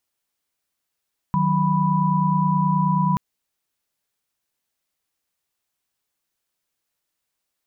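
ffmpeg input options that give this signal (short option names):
-f lavfi -i "aevalsrc='0.0891*(sin(2*PI*155.56*t)+sin(2*PI*185*t)+sin(2*PI*987.77*t))':d=1.83:s=44100"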